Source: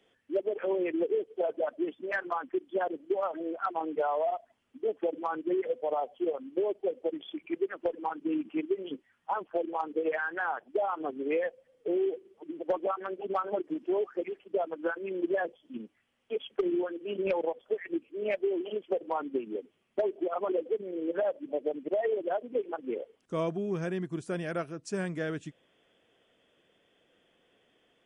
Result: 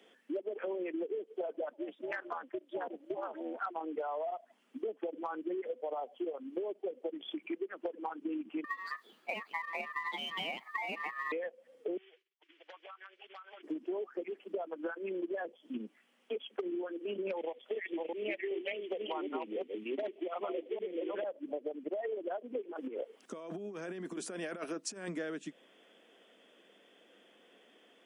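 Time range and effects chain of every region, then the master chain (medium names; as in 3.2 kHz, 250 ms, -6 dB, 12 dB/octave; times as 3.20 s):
1.73–3.61 s: bass shelf 230 Hz -9 dB + AM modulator 250 Hz, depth 60%
8.64–11.32 s: companding laws mixed up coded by mu + ring modulator 1.5 kHz + tape noise reduction on one side only decoder only
11.97–13.63 s: expander -48 dBFS + Butterworth band-pass 3.2 kHz, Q 0.82 + compression 12:1, threshold -52 dBFS
17.37–21.24 s: chunks repeated in reverse 380 ms, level -1 dB + high-order bell 2.7 kHz +10 dB 1.2 oct
22.72–25.08 s: compressor with a negative ratio -38 dBFS, ratio -0.5 + bass shelf 150 Hz -12 dB
whole clip: steep high-pass 190 Hz 48 dB/octave; compression 5:1, threshold -42 dBFS; trim +5.5 dB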